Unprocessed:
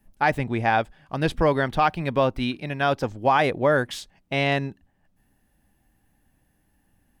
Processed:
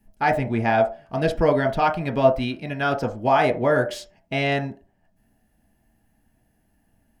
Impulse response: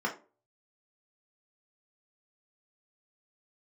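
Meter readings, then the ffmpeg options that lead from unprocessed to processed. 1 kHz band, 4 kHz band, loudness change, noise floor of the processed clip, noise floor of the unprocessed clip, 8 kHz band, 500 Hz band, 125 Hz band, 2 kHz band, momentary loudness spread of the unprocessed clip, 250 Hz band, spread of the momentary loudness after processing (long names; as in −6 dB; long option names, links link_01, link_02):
+0.5 dB, −1.5 dB, +1.5 dB, −66 dBFS, −68 dBFS, can't be measured, +3.0 dB, +0.5 dB, −0.5 dB, 8 LU, +1.5 dB, 8 LU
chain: -filter_complex "[0:a]bandreject=frequency=3600:width=15,asplit=2[link_01][link_02];[link_02]equalizer=frequency=640:width_type=o:width=0.46:gain=14.5[link_03];[1:a]atrim=start_sample=2205[link_04];[link_03][link_04]afir=irnorm=-1:irlink=0,volume=-13dB[link_05];[link_01][link_05]amix=inputs=2:normalize=0"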